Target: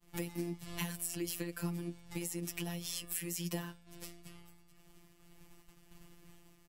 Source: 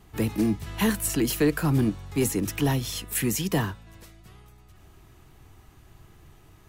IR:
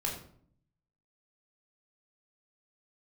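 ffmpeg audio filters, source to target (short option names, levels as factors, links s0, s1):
-filter_complex "[0:a]equalizer=f=10000:t=o:w=2.9:g=6,acompressor=threshold=0.0141:ratio=6,afftfilt=real='hypot(re,im)*cos(PI*b)':imag='0':win_size=1024:overlap=0.75,agate=range=0.0224:threshold=0.00398:ratio=3:detection=peak,asplit=2[s0][s1];[s1]adelay=12,volume=0.266[s2];[s0][s2]amix=inputs=2:normalize=0,volume=1.26"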